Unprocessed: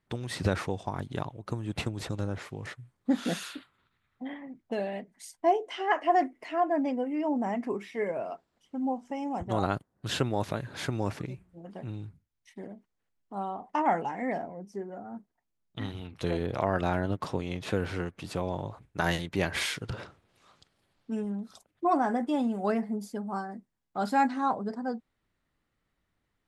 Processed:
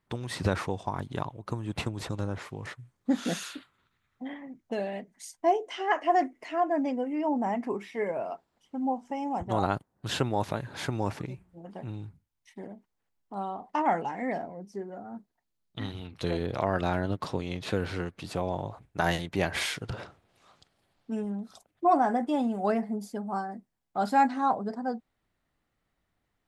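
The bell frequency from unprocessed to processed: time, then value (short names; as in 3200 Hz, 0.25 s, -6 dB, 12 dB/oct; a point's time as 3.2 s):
bell +4.5 dB 0.5 oct
1000 Hz
from 2.79 s 6400 Hz
from 7.13 s 870 Hz
from 13.34 s 4200 Hz
from 18.3 s 720 Hz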